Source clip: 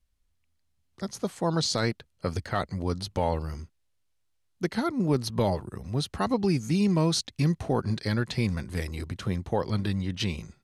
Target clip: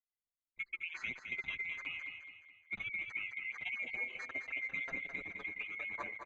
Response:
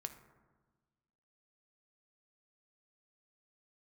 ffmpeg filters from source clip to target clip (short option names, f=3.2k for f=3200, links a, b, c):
-filter_complex "[0:a]afftfilt=real='real(if(lt(b,920),b+92*(1-2*mod(floor(b/92),2)),b),0)':imag='imag(if(lt(b,920),b+92*(1-2*mod(floor(b/92),2)),b),0)':win_size=2048:overlap=0.75,lowpass=1.6k,anlmdn=0.0251,lowshelf=f=120:g=-5,acompressor=threshold=-38dB:ratio=10,atempo=1.7,asplit=2[a][b];[b]aecho=0:1:212|424|636|848|1060:0.447|0.183|0.0751|0.0308|0.0126[c];[a][c]amix=inputs=2:normalize=0,asplit=2[d][e];[e]adelay=6.5,afreqshift=0.33[f];[d][f]amix=inputs=2:normalize=1,volume=3.5dB"